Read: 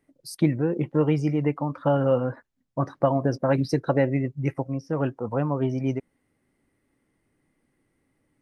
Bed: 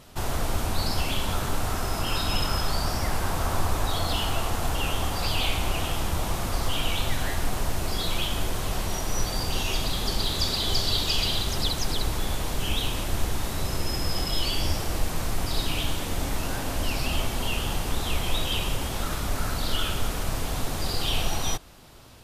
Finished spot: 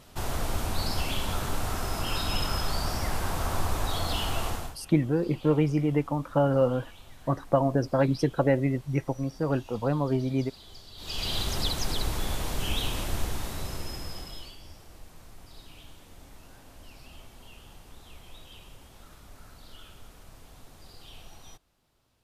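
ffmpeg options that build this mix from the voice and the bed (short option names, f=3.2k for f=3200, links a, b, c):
-filter_complex "[0:a]adelay=4500,volume=-1.5dB[a];[1:a]volume=18dB,afade=t=out:st=4.48:d=0.28:silence=0.0944061,afade=t=in:st=10.96:d=0.45:silence=0.0891251,afade=t=out:st=13.03:d=1.54:silence=0.105925[b];[a][b]amix=inputs=2:normalize=0"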